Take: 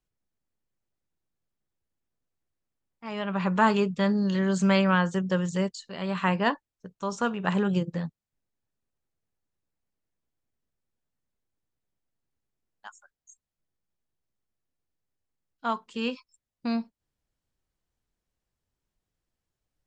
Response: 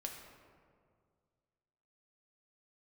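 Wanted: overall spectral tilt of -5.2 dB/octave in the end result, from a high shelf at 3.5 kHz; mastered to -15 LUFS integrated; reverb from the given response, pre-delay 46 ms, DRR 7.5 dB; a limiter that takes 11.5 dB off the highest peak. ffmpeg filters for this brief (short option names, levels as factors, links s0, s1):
-filter_complex "[0:a]highshelf=f=3500:g=8.5,alimiter=limit=0.119:level=0:latency=1,asplit=2[s0][s1];[1:a]atrim=start_sample=2205,adelay=46[s2];[s1][s2]afir=irnorm=-1:irlink=0,volume=0.531[s3];[s0][s3]amix=inputs=2:normalize=0,volume=5.31"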